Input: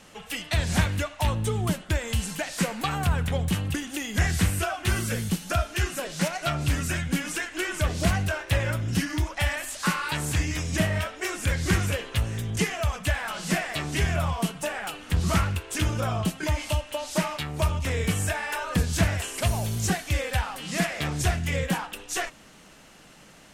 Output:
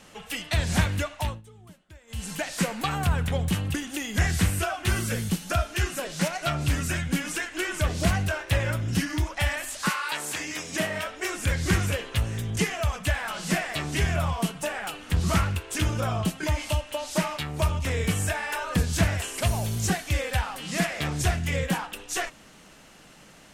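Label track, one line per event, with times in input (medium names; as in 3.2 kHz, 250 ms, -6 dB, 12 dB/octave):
1.140000	2.350000	dip -23.5 dB, fades 0.28 s
9.880000	11.060000	high-pass 600 Hz -> 210 Hz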